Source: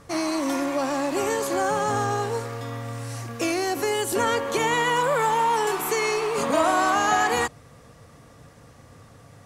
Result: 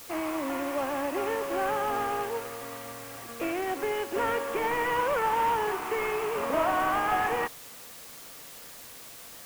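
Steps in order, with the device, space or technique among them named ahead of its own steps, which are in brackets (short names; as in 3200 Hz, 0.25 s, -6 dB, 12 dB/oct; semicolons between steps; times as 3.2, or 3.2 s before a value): army field radio (BPF 300–3000 Hz; CVSD 16 kbps; white noise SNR 16 dB); gain -3.5 dB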